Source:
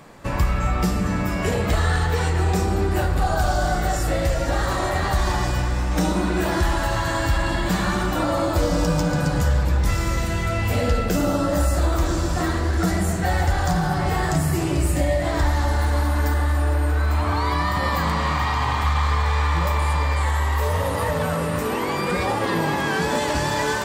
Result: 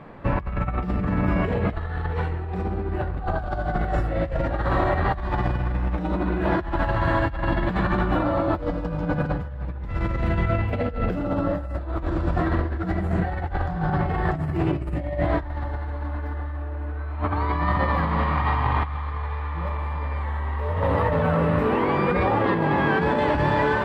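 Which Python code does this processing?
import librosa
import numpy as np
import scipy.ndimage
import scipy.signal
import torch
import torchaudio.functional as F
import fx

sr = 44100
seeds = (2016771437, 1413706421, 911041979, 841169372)

y = fx.air_absorb(x, sr, metres=490.0)
y = fx.over_compress(y, sr, threshold_db=-24.0, ratio=-0.5)
y = F.gain(torch.from_numpy(y), 1.0).numpy()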